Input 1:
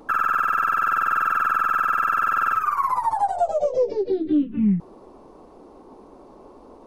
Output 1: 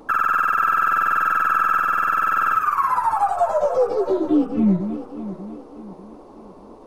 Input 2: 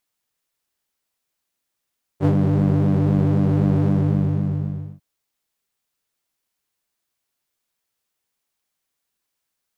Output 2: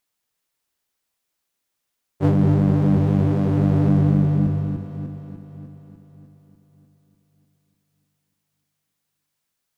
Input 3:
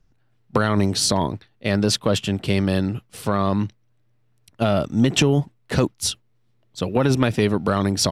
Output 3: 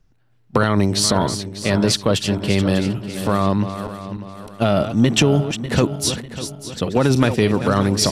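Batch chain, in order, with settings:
regenerating reverse delay 0.298 s, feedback 62%, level -10 dB; match loudness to -19 LUFS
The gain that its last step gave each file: +2.0, +0.5, +2.0 dB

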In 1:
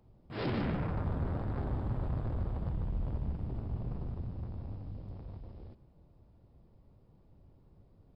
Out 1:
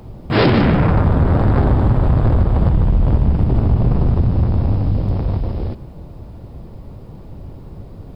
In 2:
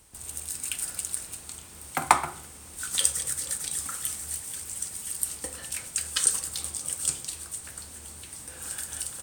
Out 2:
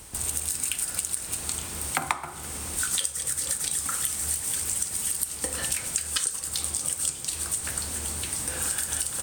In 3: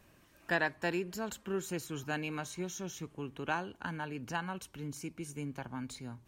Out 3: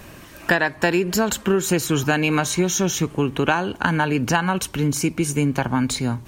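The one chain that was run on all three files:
compressor 10:1, threshold -36 dBFS; normalise peaks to -3 dBFS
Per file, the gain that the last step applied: +26.5, +12.0, +21.5 dB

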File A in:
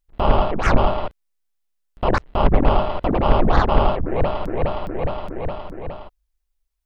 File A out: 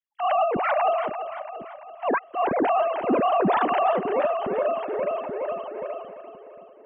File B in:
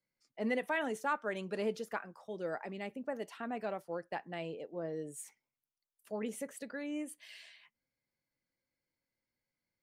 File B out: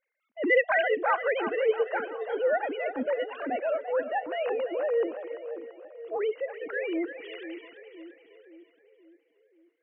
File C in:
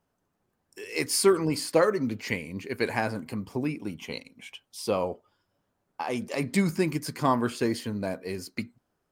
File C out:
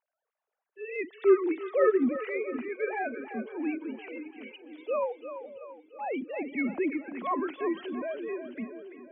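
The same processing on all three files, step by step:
sine-wave speech; transient shaper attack -7 dB, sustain +1 dB; split-band echo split 480 Hz, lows 0.527 s, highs 0.339 s, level -10 dB; normalise peaks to -12 dBFS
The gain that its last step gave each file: -6.0, +12.5, 0.0 dB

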